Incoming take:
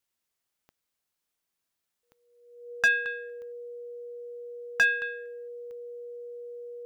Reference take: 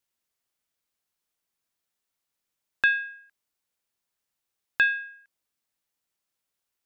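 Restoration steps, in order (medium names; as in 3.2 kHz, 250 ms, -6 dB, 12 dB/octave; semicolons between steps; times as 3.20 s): clip repair -16 dBFS; de-click; band-stop 480 Hz, Q 30; inverse comb 222 ms -16 dB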